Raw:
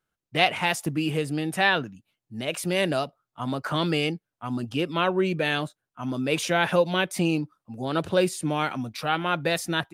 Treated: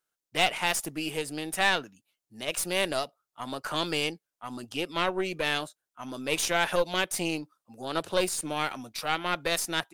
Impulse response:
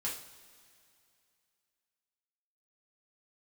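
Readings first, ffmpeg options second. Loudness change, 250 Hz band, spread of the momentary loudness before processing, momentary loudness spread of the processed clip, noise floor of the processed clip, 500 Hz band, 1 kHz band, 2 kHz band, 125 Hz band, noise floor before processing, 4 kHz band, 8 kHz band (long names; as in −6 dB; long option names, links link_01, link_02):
−3.5 dB, −8.0 dB, 11 LU, 13 LU, below −85 dBFS, −5.0 dB, −3.5 dB, −3.0 dB, −11.5 dB, below −85 dBFS, −0.5 dB, +4.0 dB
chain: -af "bass=frequency=250:gain=-13,treble=frequency=4000:gain=8,aeval=exprs='(tanh(5.01*val(0)+0.7)-tanh(0.7))/5.01':channel_layout=same"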